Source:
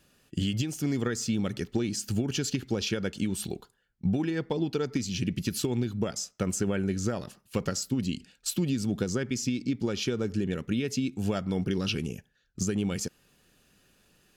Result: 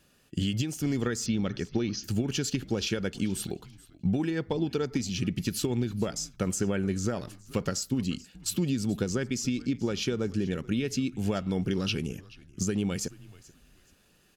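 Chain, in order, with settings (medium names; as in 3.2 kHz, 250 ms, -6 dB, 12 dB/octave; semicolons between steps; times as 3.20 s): 1.26–2.04 s: steep low-pass 6.3 kHz 96 dB/octave; frequency-shifting echo 431 ms, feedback 30%, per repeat -82 Hz, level -21 dB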